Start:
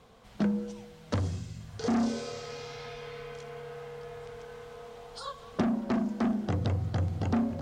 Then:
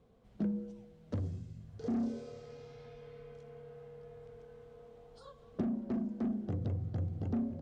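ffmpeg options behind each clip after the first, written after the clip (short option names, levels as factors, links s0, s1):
-af "firequalizer=gain_entry='entry(370,0);entry(910,-11);entry(4800,-14)':delay=0.05:min_phase=1,volume=0.501"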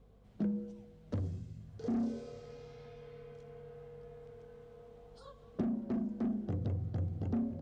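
-af "aeval=exprs='val(0)+0.000794*(sin(2*PI*50*n/s)+sin(2*PI*2*50*n/s)/2+sin(2*PI*3*50*n/s)/3+sin(2*PI*4*50*n/s)/4+sin(2*PI*5*50*n/s)/5)':c=same"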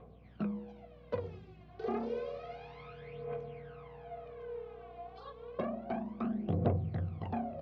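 -af "aphaser=in_gain=1:out_gain=1:delay=2.9:decay=0.72:speed=0.3:type=triangular,highpass=f=120:w=0.5412,highpass=f=120:w=1.3066,equalizer=f=120:t=q:w=4:g=-9,equalizer=f=190:t=q:w=4:g=-6,equalizer=f=280:t=q:w=4:g=-10,equalizer=f=700:t=q:w=4:g=7,equalizer=f=1100:t=q:w=4:g=6,equalizer=f=2400:t=q:w=4:g=6,lowpass=f=3800:w=0.5412,lowpass=f=3800:w=1.3066,aeval=exprs='val(0)+0.000891*(sin(2*PI*60*n/s)+sin(2*PI*2*60*n/s)/2+sin(2*PI*3*60*n/s)/3+sin(2*PI*4*60*n/s)/4+sin(2*PI*5*60*n/s)/5)':c=same,volume=1.41"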